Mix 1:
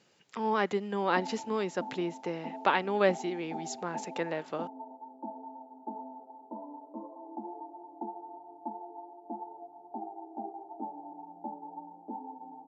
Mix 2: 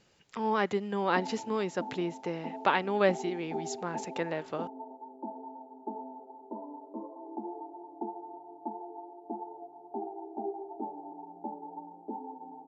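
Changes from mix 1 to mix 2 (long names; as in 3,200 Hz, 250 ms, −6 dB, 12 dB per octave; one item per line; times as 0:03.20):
background: add parametric band 400 Hz +14 dB 0.23 octaves
master: remove high-pass filter 150 Hz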